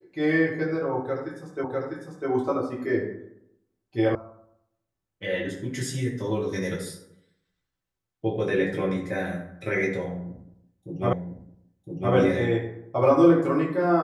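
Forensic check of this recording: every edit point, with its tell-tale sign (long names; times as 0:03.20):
0:01.64: the same again, the last 0.65 s
0:04.15: cut off before it has died away
0:11.13: the same again, the last 1.01 s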